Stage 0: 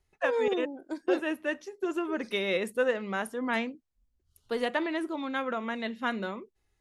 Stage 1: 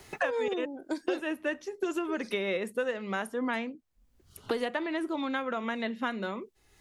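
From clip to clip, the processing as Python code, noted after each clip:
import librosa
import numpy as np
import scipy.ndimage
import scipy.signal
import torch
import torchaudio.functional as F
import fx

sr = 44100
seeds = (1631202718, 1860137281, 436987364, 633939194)

y = fx.band_squash(x, sr, depth_pct=100)
y = F.gain(torch.from_numpy(y), -2.0).numpy()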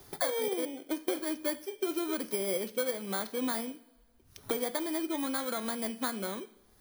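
y = fx.bit_reversed(x, sr, seeds[0], block=16)
y = fx.rev_double_slope(y, sr, seeds[1], early_s=0.64, late_s=2.2, knee_db=-18, drr_db=13.5)
y = F.gain(torch.from_numpy(y), -1.5).numpy()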